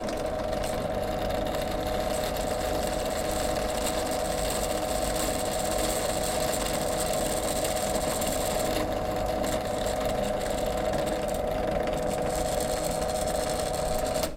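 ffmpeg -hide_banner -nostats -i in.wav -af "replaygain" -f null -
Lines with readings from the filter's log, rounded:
track_gain = +12.2 dB
track_peak = 0.156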